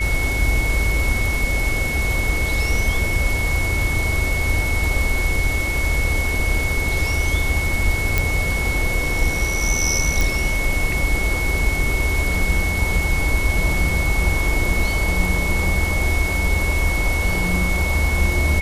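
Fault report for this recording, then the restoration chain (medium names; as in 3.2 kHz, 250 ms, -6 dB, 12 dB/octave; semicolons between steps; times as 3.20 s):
whine 2.2 kHz -23 dBFS
8.18 s: pop
10.21 s: pop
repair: de-click; band-stop 2.2 kHz, Q 30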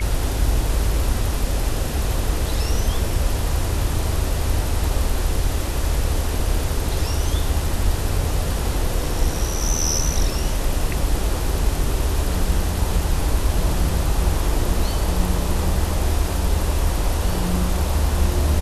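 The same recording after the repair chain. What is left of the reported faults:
nothing left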